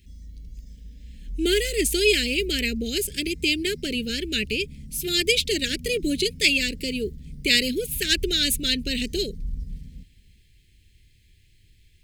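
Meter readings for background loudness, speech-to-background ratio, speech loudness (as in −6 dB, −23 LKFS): −40.0 LKFS, 16.5 dB, −23.5 LKFS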